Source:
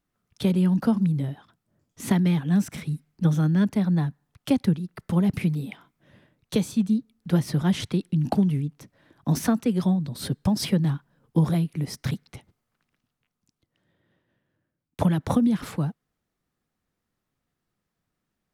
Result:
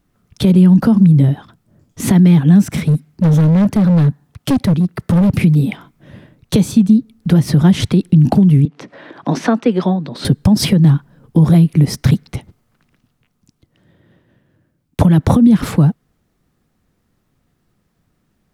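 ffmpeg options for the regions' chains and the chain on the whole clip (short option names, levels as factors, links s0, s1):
-filter_complex "[0:a]asettb=1/sr,asplit=3[s0][s1][s2];[s0]atrim=end=2.644[s3];[s1]atrim=start=2.64:end=5.41,asetpts=PTS-STARTPTS,afade=t=in:d=0.004:c=qsin,afade=t=out:st=2.766:d=0.004:c=qsin,highpass=51,acompressor=threshold=0.0631:ratio=1.5:attack=3.2:release=140:knee=1:detection=peak,volume=22.4,asoftclip=hard,volume=0.0447[s4];[s2]atrim=start=5.406[s5];[s3][s4]acrossfade=d=0.004:c1=hsin:c2=qsin[s6];[s6][s5]acrossfade=d=0.004:c1=qsin:c2=hsin,asettb=1/sr,asplit=3[s7][s8][s9];[s7]atrim=end=8.654[s10];[s8]atrim=start=8.65:end=10.25,asetpts=PTS-STARTPTS,afade=t=in:d=0.004:c=qsin,afade=t=out:st=1.596:d=0.004:c=qsin,highpass=380,lowpass=3600,acompressor=mode=upward:threshold=0.0112:ratio=2.5:attack=3.2:release=140:knee=2.83:detection=peak[s11];[s9]atrim=start=10.246[s12];[s10][s11]acrossfade=d=0.004:c1=hsin:c2=qsin[s13];[s13][s12]acrossfade=d=0.004:c1=qsin:c2=hsin,lowshelf=f=440:g=7.5,acompressor=threshold=0.141:ratio=6,alimiter=level_in=4.47:limit=0.891:release=50:level=0:latency=1,volume=0.891"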